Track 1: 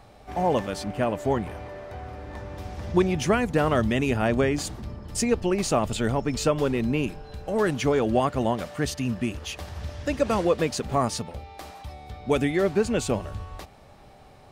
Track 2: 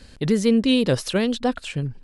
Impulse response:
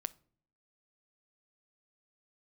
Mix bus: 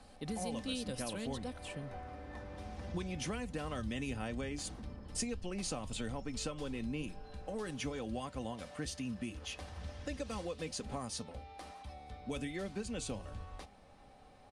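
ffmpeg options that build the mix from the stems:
-filter_complex "[0:a]lowpass=7k,flanger=delay=4.7:depth=2.7:regen=84:speed=1.1:shape=sinusoidal,volume=-5dB[a];[1:a]volume=-16dB[b];[a][b]amix=inputs=2:normalize=0,equalizer=f=9.6k:w=3.2:g=11,aecho=1:1:3.9:0.41,acrossover=split=130|3000[c][d][e];[d]acompressor=threshold=-39dB:ratio=6[f];[c][f][e]amix=inputs=3:normalize=0"

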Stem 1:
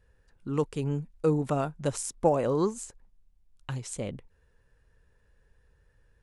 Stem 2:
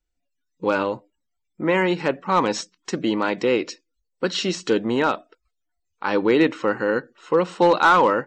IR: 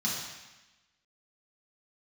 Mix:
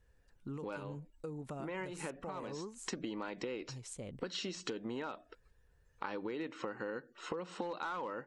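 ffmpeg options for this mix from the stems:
-filter_complex "[0:a]alimiter=level_in=0.5dB:limit=-24dB:level=0:latency=1:release=475,volume=-0.5dB,volume=-5.5dB,asplit=2[a][b];[1:a]acompressor=threshold=-26dB:ratio=6,volume=0dB[c];[b]apad=whole_len=364497[d];[c][d]sidechaincompress=threshold=-46dB:ratio=8:attack=16:release=199[e];[a][e]amix=inputs=2:normalize=0,acompressor=threshold=-41dB:ratio=3"

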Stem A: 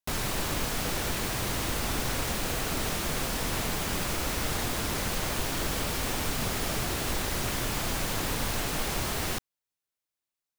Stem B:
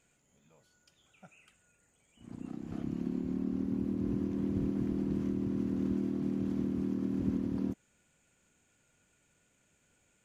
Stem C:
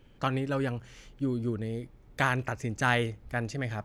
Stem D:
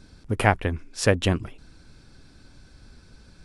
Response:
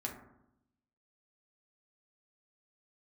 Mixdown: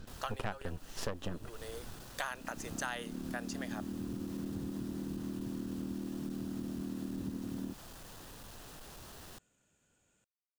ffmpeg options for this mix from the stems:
-filter_complex "[0:a]asoftclip=type=hard:threshold=-29dB,volume=-18dB[a];[1:a]volume=-3dB[b];[2:a]highpass=f=510:w=0.5412,highpass=f=510:w=1.3066,aemphasis=mode=production:type=cd,volume=-1dB[c];[3:a]aeval=exprs='max(val(0),0)':c=same,lowpass=f=3.2k:p=1,volume=2dB[d];[a][b][c][d]amix=inputs=4:normalize=0,equalizer=f=2.2k:t=o:w=0.28:g=-8.5,acompressor=threshold=-36dB:ratio=4"

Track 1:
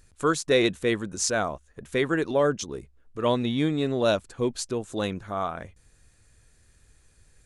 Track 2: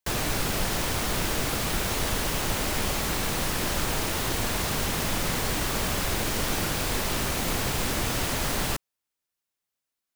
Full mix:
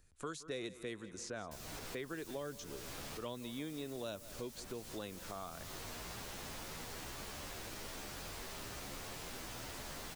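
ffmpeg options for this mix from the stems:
-filter_complex "[0:a]volume=-10.5dB,asplit=3[a][b][c];[b]volume=-20.5dB[d];[1:a]acrossover=split=200|5000[e][f][g];[e]acompressor=threshold=-41dB:ratio=4[h];[f]acompressor=threshold=-47dB:ratio=4[i];[g]acompressor=threshold=-37dB:ratio=4[j];[h][i][j]amix=inputs=3:normalize=0,asplit=2[k][l];[l]adelay=11.4,afreqshift=1.2[m];[k][m]amix=inputs=2:normalize=1,adelay=1450,volume=0dB[n];[c]apad=whole_len=512319[o];[n][o]sidechaincompress=threshold=-46dB:ratio=5:attack=6.1:release=282[p];[d]aecho=0:1:168|336|504|672|840|1008|1176|1344|1512:1|0.59|0.348|0.205|0.121|0.0715|0.0422|0.0249|0.0147[q];[a][p][q]amix=inputs=3:normalize=0,acrossover=split=280|2700|5600[r][s][t][u];[r]acompressor=threshold=-51dB:ratio=4[v];[s]acompressor=threshold=-44dB:ratio=4[w];[t]acompressor=threshold=-54dB:ratio=4[x];[u]acompressor=threshold=-55dB:ratio=4[y];[v][w][x][y]amix=inputs=4:normalize=0"

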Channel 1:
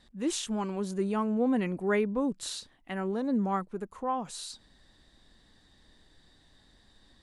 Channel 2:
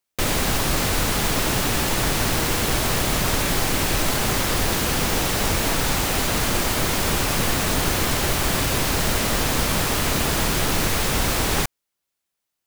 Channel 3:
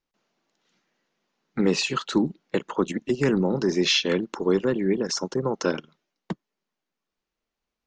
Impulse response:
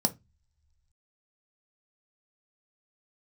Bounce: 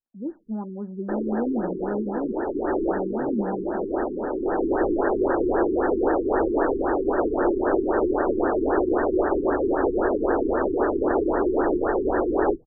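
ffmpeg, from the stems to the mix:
-filter_complex "[0:a]acrusher=bits=7:mix=0:aa=0.5,volume=-8dB,asplit=3[a][b][c];[b]volume=-10.5dB[d];[1:a]lowshelf=f=250:t=q:w=3:g=-12.5,adelay=900,volume=1dB,asplit=2[e][f];[f]volume=-20dB[g];[2:a]volume=-16.5dB[h];[c]apad=whole_len=598036[i];[e][i]sidechaincompress=threshold=-44dB:ratio=8:attack=16:release=696[j];[3:a]atrim=start_sample=2205[k];[d][g]amix=inputs=2:normalize=0[l];[l][k]afir=irnorm=-1:irlink=0[m];[a][j][h][m]amix=inputs=4:normalize=0,afftfilt=real='re*lt(b*sr/1024,420*pow(1900/420,0.5+0.5*sin(2*PI*3.8*pts/sr)))':imag='im*lt(b*sr/1024,420*pow(1900/420,0.5+0.5*sin(2*PI*3.8*pts/sr)))':win_size=1024:overlap=0.75"

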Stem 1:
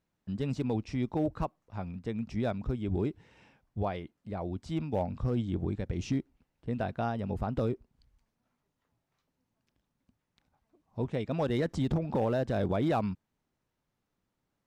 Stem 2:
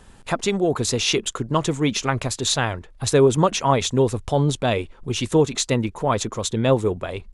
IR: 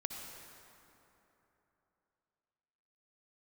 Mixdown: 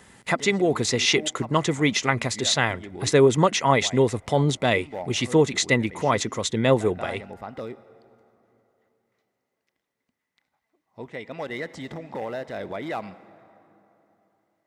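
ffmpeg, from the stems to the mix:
-filter_complex "[0:a]highpass=f=570:p=1,volume=-0.5dB,asplit=2[a][b];[b]volume=-10dB[c];[1:a]highpass=110,acrossover=split=7300[d][e];[e]acompressor=threshold=-46dB:ratio=4:attack=1:release=60[f];[d][f]amix=inputs=2:normalize=0,highshelf=f=5.7k:g=4.5,volume=-1dB,asplit=2[g][h];[h]apad=whole_len=646747[i];[a][i]sidechaincompress=threshold=-28dB:ratio=8:attack=46:release=184[j];[2:a]atrim=start_sample=2205[k];[c][k]afir=irnorm=-1:irlink=0[l];[j][g][l]amix=inputs=3:normalize=0,equalizer=f=2k:w=7.5:g=13.5"

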